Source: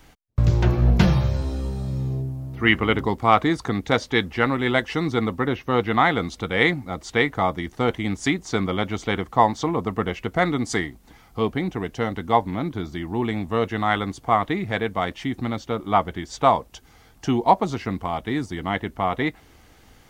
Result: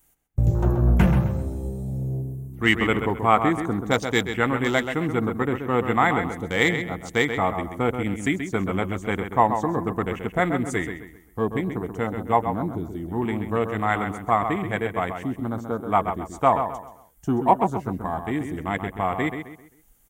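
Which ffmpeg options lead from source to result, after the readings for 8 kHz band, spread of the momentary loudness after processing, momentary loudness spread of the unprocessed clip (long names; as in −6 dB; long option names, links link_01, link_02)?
−1.5 dB, 9 LU, 9 LU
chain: -filter_complex "[0:a]afwtdn=0.0251,aexciter=amount=10.6:drive=4.3:freq=7000,asplit=2[link_01][link_02];[link_02]adelay=131,lowpass=frequency=3800:poles=1,volume=-7.5dB,asplit=2[link_03][link_04];[link_04]adelay=131,lowpass=frequency=3800:poles=1,volume=0.35,asplit=2[link_05][link_06];[link_06]adelay=131,lowpass=frequency=3800:poles=1,volume=0.35,asplit=2[link_07][link_08];[link_08]adelay=131,lowpass=frequency=3800:poles=1,volume=0.35[link_09];[link_01][link_03][link_05][link_07][link_09]amix=inputs=5:normalize=0,volume=-1.5dB"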